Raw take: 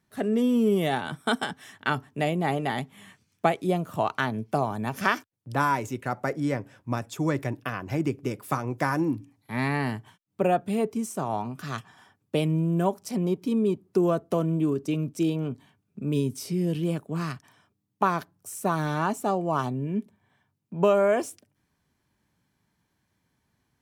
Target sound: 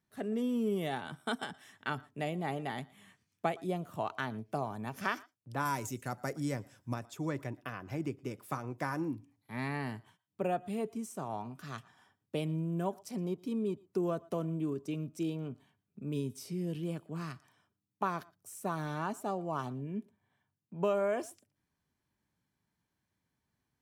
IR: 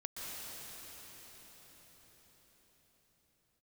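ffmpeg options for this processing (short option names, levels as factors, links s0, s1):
-filter_complex "[0:a]asettb=1/sr,asplit=3[s0][s1][s2];[s0]atrim=end=5.654[s3];[s1]atrim=start=5.65:end=6.94,asetpts=PTS-STARTPTS,afade=t=in:d=0.004:c=qsin,afade=t=out:st=1.286:d=0.004:c=qsin,bass=f=250:g=4,treble=f=4000:g=12[s4];[s2]atrim=start=6.936[s5];[s3][s4]acrossfade=d=0.004:c1=hsin:c2=qsin[s6];[s6][s5]acrossfade=d=0.004:c1=qsin:c2=hsin[s7];[1:a]atrim=start_sample=2205,afade=t=out:st=0.16:d=0.01,atrim=end_sample=7497[s8];[s7][s8]afir=irnorm=-1:irlink=0,volume=0.596"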